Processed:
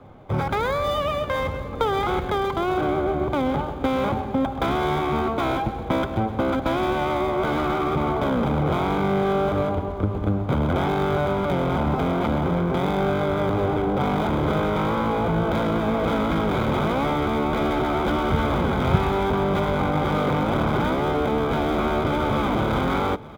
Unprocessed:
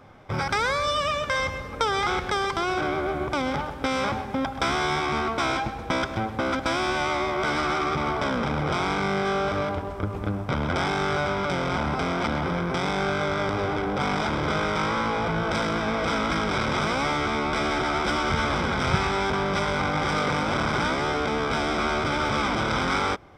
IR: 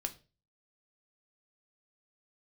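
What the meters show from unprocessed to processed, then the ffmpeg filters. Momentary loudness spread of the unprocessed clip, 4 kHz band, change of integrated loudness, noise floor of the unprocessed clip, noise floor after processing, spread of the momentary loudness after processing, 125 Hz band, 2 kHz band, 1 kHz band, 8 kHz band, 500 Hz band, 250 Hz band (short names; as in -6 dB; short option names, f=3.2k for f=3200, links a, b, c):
3 LU, -4.5 dB, +2.5 dB, -35 dBFS, -30 dBFS, 2 LU, +5.5 dB, -4.0 dB, +1.0 dB, n/a, +4.5 dB, +5.5 dB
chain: -filter_complex "[0:a]acrossover=split=5100[a][b];[b]acompressor=threshold=-51dB:ratio=4:attack=1:release=60[c];[a][c]amix=inputs=2:normalize=0,equalizer=f=1.8k:w=0.98:g=-10.5,aecho=1:1:903|1806|2709|3612|4515:0.0891|0.0526|0.031|0.0183|0.0108,acrossover=split=150|690|3500[d][e][f][g];[g]acrusher=samples=16:mix=1:aa=0.000001[h];[d][e][f][h]amix=inputs=4:normalize=0,volume=5.5dB"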